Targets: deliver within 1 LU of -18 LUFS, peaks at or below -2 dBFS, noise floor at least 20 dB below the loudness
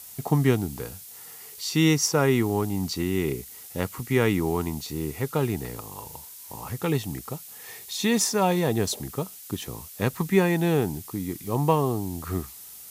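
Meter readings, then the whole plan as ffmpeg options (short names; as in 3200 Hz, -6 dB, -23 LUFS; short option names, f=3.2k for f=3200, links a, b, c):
noise floor -44 dBFS; noise floor target -46 dBFS; loudness -26.0 LUFS; peak -7.0 dBFS; loudness target -18.0 LUFS
-> -af "afftdn=nr=6:nf=-44"
-af "volume=8dB,alimiter=limit=-2dB:level=0:latency=1"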